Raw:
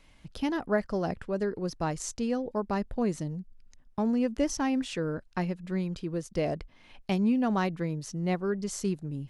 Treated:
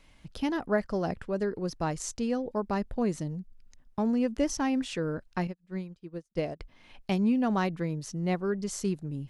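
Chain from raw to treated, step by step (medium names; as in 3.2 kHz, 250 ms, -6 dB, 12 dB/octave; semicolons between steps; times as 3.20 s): 5.47–6.60 s: upward expansion 2.5:1, over -46 dBFS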